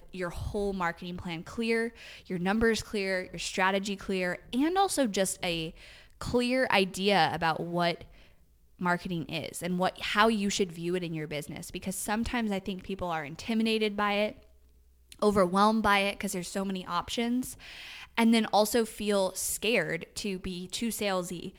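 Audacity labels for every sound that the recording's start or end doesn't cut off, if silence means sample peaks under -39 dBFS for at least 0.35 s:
6.210000	8.020000	sound
8.810000	14.320000	sound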